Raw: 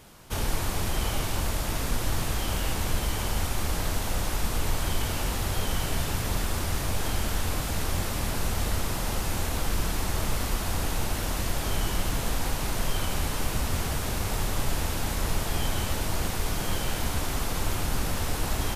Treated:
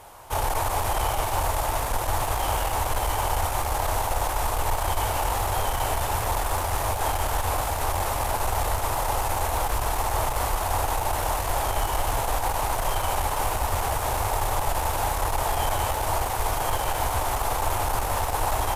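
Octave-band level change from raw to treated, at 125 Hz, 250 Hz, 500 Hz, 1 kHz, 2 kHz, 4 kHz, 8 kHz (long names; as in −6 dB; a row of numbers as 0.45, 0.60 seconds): 0.0, −5.5, +6.0, +11.0, +2.5, −0.5, +2.0 decibels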